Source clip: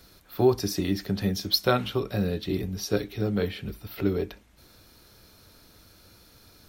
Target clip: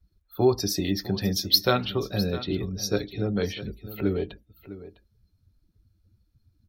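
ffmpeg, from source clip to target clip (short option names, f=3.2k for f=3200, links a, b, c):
-filter_complex "[0:a]asettb=1/sr,asplit=3[a][b][c];[a]atrim=end=0.864[d];[b]atrim=start=0.86:end=1.49,asetpts=PTS-STARTPTS,afade=t=in:d=0.004:c=qsin,afade=t=out:st=0.626:d=0.004:c=qsin,highshelf=f=5.9k:g=3.5[e];[c]atrim=start=1.486[f];[d][e]acrossfade=d=0.004:c1=hsin:c2=qsin[g];[g][f]acrossfade=d=0.004:c1=qsin:c2=hsin,afftdn=nr=30:nf=-44,aecho=1:1:654:0.178,adynamicequalizer=threshold=0.00631:dfrequency=2600:dqfactor=0.7:tfrequency=2600:tqfactor=0.7:attack=5:release=100:ratio=0.375:range=2.5:mode=boostabove:tftype=highshelf"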